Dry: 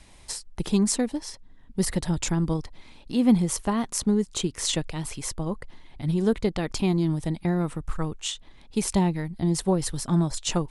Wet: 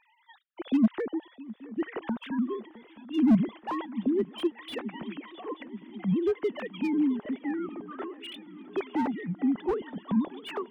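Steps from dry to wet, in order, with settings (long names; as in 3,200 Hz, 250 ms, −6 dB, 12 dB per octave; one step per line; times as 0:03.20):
three sine waves on the formant tracks
feedback echo with a long and a short gap by turns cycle 881 ms, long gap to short 3 to 1, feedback 64%, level −20 dB
slew-rate limiting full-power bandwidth 49 Hz
level −2.5 dB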